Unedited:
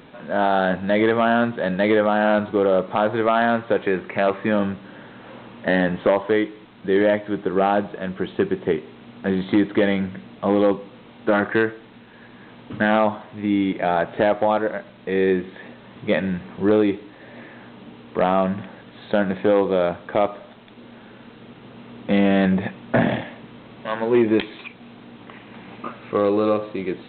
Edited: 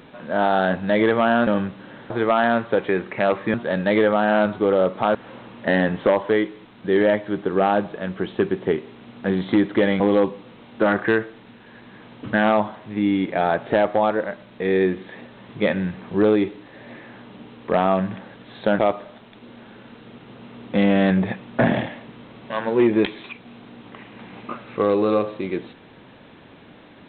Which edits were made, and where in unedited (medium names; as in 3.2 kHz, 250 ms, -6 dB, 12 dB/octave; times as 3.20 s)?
1.47–3.08 s: swap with 4.52–5.15 s
10.00–10.47 s: delete
19.26–20.14 s: delete